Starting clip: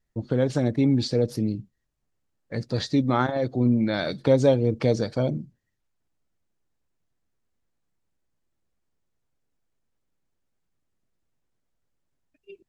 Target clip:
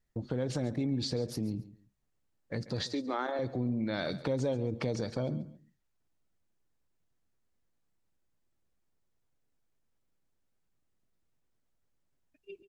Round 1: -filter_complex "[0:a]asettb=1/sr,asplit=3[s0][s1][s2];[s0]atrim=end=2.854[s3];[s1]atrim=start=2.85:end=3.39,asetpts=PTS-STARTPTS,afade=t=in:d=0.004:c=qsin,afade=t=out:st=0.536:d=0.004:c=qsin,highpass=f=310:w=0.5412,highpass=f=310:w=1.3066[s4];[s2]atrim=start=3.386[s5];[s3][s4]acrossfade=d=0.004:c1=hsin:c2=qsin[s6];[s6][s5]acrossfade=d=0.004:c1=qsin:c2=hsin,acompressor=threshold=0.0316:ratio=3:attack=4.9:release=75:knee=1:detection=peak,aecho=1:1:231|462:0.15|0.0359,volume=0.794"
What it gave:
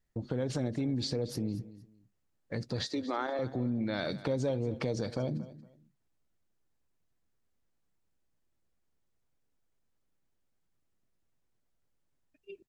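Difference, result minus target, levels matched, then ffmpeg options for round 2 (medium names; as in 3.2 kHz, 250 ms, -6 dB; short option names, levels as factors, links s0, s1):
echo 93 ms late
-filter_complex "[0:a]asettb=1/sr,asplit=3[s0][s1][s2];[s0]atrim=end=2.854[s3];[s1]atrim=start=2.85:end=3.39,asetpts=PTS-STARTPTS,afade=t=in:d=0.004:c=qsin,afade=t=out:st=0.536:d=0.004:c=qsin,highpass=f=310:w=0.5412,highpass=f=310:w=1.3066[s4];[s2]atrim=start=3.386[s5];[s3][s4]acrossfade=d=0.004:c1=hsin:c2=qsin[s6];[s6][s5]acrossfade=d=0.004:c1=qsin:c2=hsin,acompressor=threshold=0.0316:ratio=3:attack=4.9:release=75:knee=1:detection=peak,aecho=1:1:138|276:0.15|0.0359,volume=0.794"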